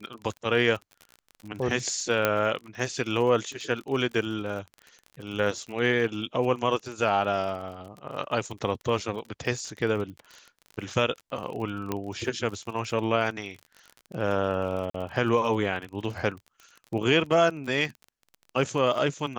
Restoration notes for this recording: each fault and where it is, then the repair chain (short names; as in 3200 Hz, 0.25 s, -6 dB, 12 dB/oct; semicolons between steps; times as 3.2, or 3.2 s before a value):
crackle 35/s -35 dBFS
2.25 pop -8 dBFS
11.92 pop -14 dBFS
14.9–14.94 gap 44 ms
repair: de-click; interpolate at 14.9, 44 ms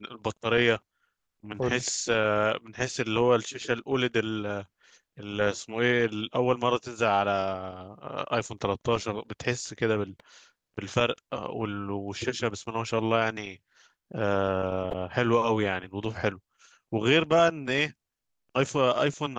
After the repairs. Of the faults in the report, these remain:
none